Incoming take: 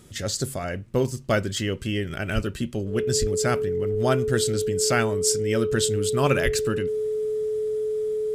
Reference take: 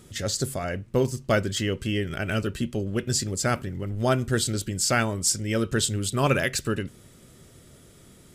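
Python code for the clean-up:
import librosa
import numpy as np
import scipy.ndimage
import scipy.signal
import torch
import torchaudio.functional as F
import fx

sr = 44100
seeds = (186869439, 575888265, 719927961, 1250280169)

y = fx.notch(x, sr, hz=430.0, q=30.0)
y = fx.fix_deplosive(y, sr, at_s=(2.34, 3.2, 6.44))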